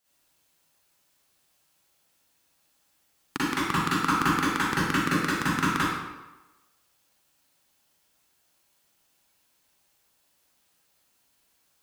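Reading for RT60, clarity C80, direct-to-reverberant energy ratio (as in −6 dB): 1.1 s, 0.0 dB, −10.5 dB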